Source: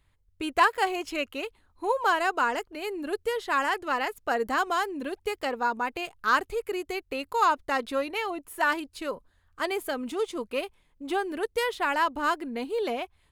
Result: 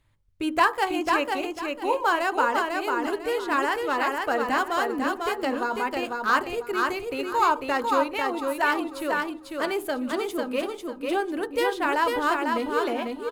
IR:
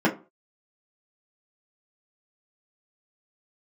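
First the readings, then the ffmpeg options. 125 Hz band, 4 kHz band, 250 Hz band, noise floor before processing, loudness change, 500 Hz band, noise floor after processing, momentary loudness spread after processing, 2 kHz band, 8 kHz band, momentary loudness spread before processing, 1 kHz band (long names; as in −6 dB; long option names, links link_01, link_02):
can't be measured, +2.0 dB, +6.0 dB, −67 dBFS, +3.0 dB, +3.5 dB, −41 dBFS, 6 LU, +2.5 dB, +2.0 dB, 10 LU, +3.0 dB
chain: -filter_complex "[0:a]aecho=1:1:497|994|1491|1988:0.668|0.174|0.0452|0.0117,asplit=2[link_01][link_02];[1:a]atrim=start_sample=2205,asetrate=26019,aresample=44100[link_03];[link_02][link_03]afir=irnorm=-1:irlink=0,volume=-26.5dB[link_04];[link_01][link_04]amix=inputs=2:normalize=0" -ar 44100 -c:a adpcm_ima_wav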